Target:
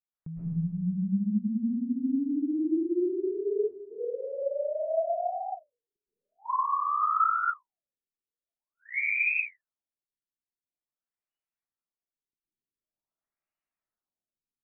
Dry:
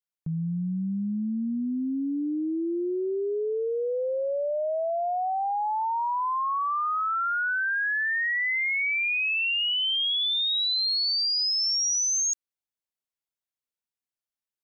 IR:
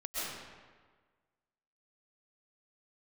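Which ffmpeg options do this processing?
-filter_complex "[0:a]equalizer=frequency=490:width=6.2:gain=-7,acompressor=threshold=-34dB:ratio=2,asettb=1/sr,asplit=3[link_01][link_02][link_03];[link_01]atrim=end=3.774[link_04];[link_02]atrim=start=3.77:end=5.96,asetpts=PTS-STARTPTS,afade=type=in:duration=0.004:curve=qsin,afade=type=out:start_time=2.186:duration=0.004:curve=qsin,acrossover=split=830[link_05][link_06];[link_05]aeval=exprs='val(0)*(1-0.7/2+0.7/2*cos(2*PI*1.8*n/s))':channel_layout=same[link_07];[link_06]aeval=exprs='val(0)*(1-0.7/2-0.7/2*cos(2*PI*1.8*n/s))':channel_layout=same[link_08];[link_07][link_08]amix=inputs=2:normalize=0[link_09];[link_03]atrim=start=5.956[link_10];[link_04][link_09]acrossfade=duration=0.004:curve1=hsin:curve2=qsin[link_11];[link_11][link_10]acrossfade=duration=0.004:curve1=qsin:curve2=hsin[link_12];[1:a]atrim=start_sample=2205[link_13];[link_12][link_13]afir=irnorm=-1:irlink=0,afftfilt=real='re*lt(b*sr/1024,410*pow(3000/410,0.5+0.5*sin(2*PI*0.46*pts/sr)))':imag='im*lt(b*sr/1024,410*pow(3000/410,0.5+0.5*sin(2*PI*0.46*pts/sr)))':win_size=1024:overlap=0.75"

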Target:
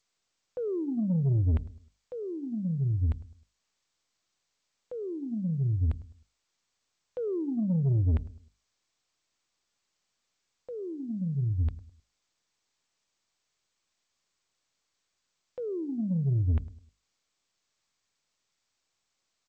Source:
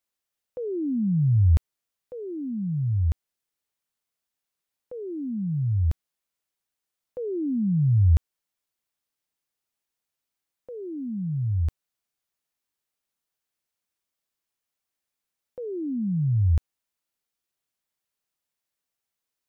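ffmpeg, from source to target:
ffmpeg -i in.wav -filter_complex "[0:a]equalizer=frequency=280:width_type=o:width=0.49:gain=-4,bandreject=frequency=50:width_type=h:width=6,bandreject=frequency=100:width_type=h:width=6,bandreject=frequency=150:width_type=h:width=6,bandreject=frequency=200:width_type=h:width=6,bandreject=frequency=250:width_type=h:width=6,bandreject=frequency=300:width_type=h:width=6,asoftclip=type=tanh:threshold=-21.5dB,asplit=2[link_01][link_02];[link_02]adelay=104,lowpass=frequency=860:poles=1,volume=-17.5dB,asplit=2[link_03][link_04];[link_04]adelay=104,lowpass=frequency=860:poles=1,volume=0.38,asplit=2[link_05][link_06];[link_06]adelay=104,lowpass=frequency=860:poles=1,volume=0.38[link_07];[link_03][link_05][link_07]amix=inputs=3:normalize=0[link_08];[link_01][link_08]amix=inputs=2:normalize=0" -ar 16000 -c:a g722 out.g722

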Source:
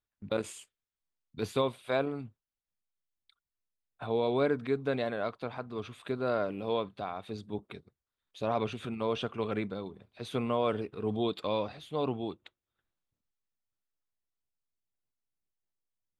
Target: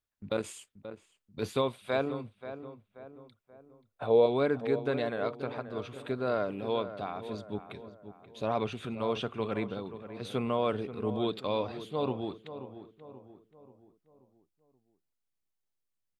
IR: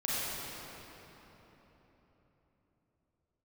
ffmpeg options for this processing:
-filter_complex "[0:a]asettb=1/sr,asplit=3[link_01][link_02][link_03];[link_01]atrim=end=2.244[link_04];[link_02]atrim=start=2.24:end=4.26,asetpts=PTS-STARTPTS,afade=type=in:duration=0.004:curve=qsin,afade=type=out:start_time=2.016:duration=0.004:curve=qsin,equalizer=frequency=520:width=1.9:gain=10[link_05];[link_03]atrim=start=4.256[link_06];[link_04][link_05]acrossfade=duration=0.004:curve1=hsin:curve2=qsin[link_07];[link_07][link_06]acrossfade=duration=0.004:curve1=qsin:curve2=hsin,asplit=2[link_08][link_09];[link_09]adelay=532,lowpass=frequency=1800:poles=1,volume=-11.5dB,asplit=2[link_10][link_11];[link_11]adelay=532,lowpass=frequency=1800:poles=1,volume=0.47,asplit=2[link_12][link_13];[link_13]adelay=532,lowpass=frequency=1800:poles=1,volume=0.47,asplit=2[link_14][link_15];[link_15]adelay=532,lowpass=frequency=1800:poles=1,volume=0.47,asplit=2[link_16][link_17];[link_17]adelay=532,lowpass=frequency=1800:poles=1,volume=0.47[link_18];[link_08][link_10][link_12][link_14][link_16][link_18]amix=inputs=6:normalize=0"

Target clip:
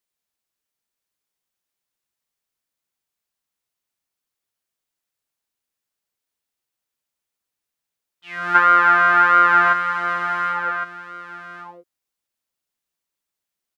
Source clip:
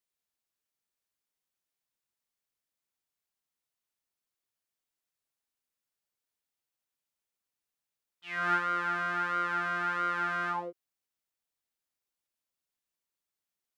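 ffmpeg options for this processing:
ffmpeg -i in.wav -filter_complex "[0:a]asplit=3[link_01][link_02][link_03];[link_01]afade=type=out:start_time=8.54:duration=0.02[link_04];[link_02]equalizer=frequency=1100:width=0.35:gain=14,afade=type=in:start_time=8.54:duration=0.02,afade=type=out:start_time=9.72:duration=0.02[link_05];[link_03]afade=type=in:start_time=9.72:duration=0.02[link_06];[link_04][link_05][link_06]amix=inputs=3:normalize=0,aecho=1:1:1110:0.335,volume=4.5dB" out.wav

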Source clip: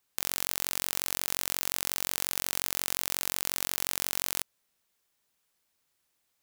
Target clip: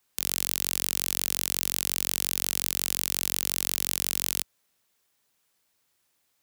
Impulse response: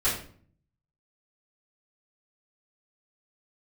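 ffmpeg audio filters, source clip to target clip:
-filter_complex "[0:a]highpass=47,acrossover=split=310|2100[link_01][link_02][link_03];[link_02]asoftclip=type=tanh:threshold=-39.5dB[link_04];[link_01][link_04][link_03]amix=inputs=3:normalize=0,volume=4dB"

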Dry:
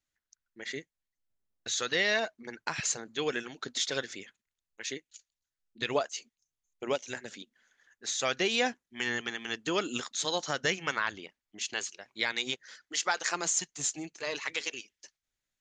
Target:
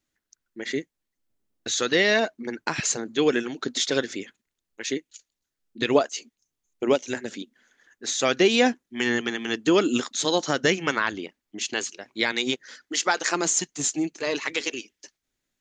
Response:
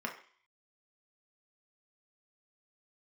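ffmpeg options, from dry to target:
-af "equalizer=frequency=290:width=1:gain=9.5,volume=5.5dB"

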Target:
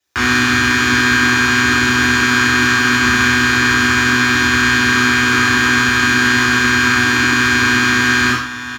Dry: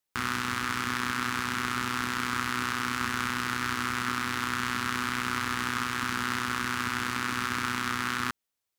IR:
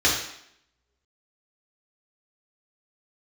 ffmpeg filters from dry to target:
-filter_complex "[0:a]aecho=1:1:41|46|49|88|451|590:0.447|0.15|0.133|0.376|0.15|0.211[link_01];[1:a]atrim=start_sample=2205,atrim=end_sample=4410[link_02];[link_01][link_02]afir=irnorm=-1:irlink=0,volume=-1dB"

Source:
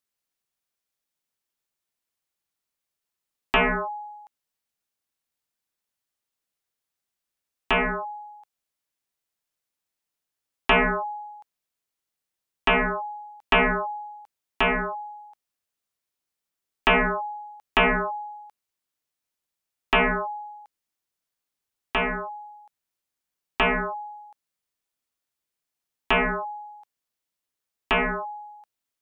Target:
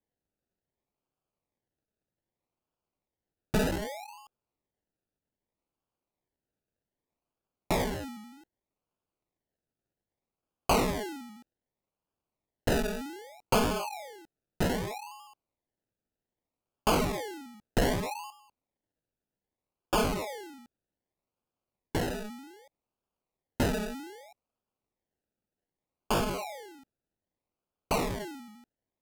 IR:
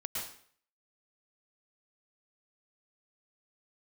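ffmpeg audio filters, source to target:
-filter_complex "[0:a]asettb=1/sr,asplit=3[link_01][link_02][link_03];[link_01]atrim=end=18.304[link_04];[link_02]atrim=start=18.3:end=19.94,asetpts=PTS-STARTPTS,afade=type=in:duration=0.004:curve=qsin,afade=type=out:start_time=1.636:duration=0.004:curve=qsin,highpass=1400[link_05];[link_03]atrim=start=19.936[link_06];[link_04][link_05]acrossfade=duration=0.004:curve1=hsin:curve2=qsin[link_07];[link_07][link_06]acrossfade=duration=0.004:curve1=qsin:curve2=hsin,acrusher=samples=32:mix=1:aa=0.000001:lfo=1:lforange=19.2:lforate=0.64[link_08];[1:a]atrim=start_sample=2205,atrim=end_sample=3528,asetrate=31752,aresample=44100[link_09];[link_08][link_09]afir=irnorm=-1:irlink=0,volume=-4.5dB"

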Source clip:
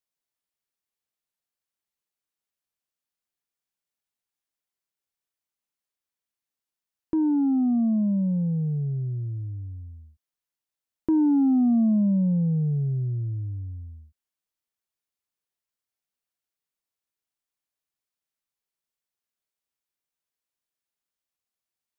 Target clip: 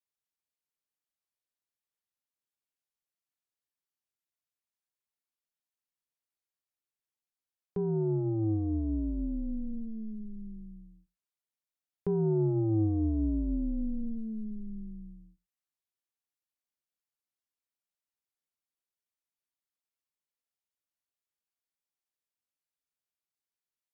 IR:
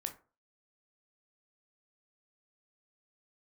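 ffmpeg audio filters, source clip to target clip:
-filter_complex "[0:a]asetrate=40517,aresample=44100,aeval=exprs='val(0)*sin(2*PI*110*n/s)':channel_layout=same,asplit=2[link_01][link_02];[1:a]atrim=start_sample=2205,afade=type=out:start_time=0.16:duration=0.01,atrim=end_sample=7497[link_03];[link_02][link_03]afir=irnorm=-1:irlink=0,volume=-7dB[link_04];[link_01][link_04]amix=inputs=2:normalize=0,volume=-7dB"

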